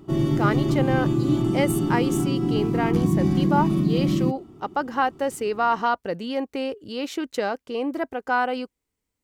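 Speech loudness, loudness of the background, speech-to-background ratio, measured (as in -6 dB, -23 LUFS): -27.0 LUFS, -22.5 LUFS, -4.5 dB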